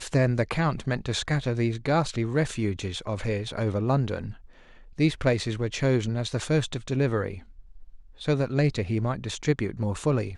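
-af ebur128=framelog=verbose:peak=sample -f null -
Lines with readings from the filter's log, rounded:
Integrated loudness:
  I:         -27.0 LUFS
  Threshold: -37.5 LUFS
Loudness range:
  LRA:         1.2 LU
  Threshold: -47.7 LUFS
  LRA low:   -28.4 LUFS
  LRA high:  -27.1 LUFS
Sample peak:
  Peak:      -10.3 dBFS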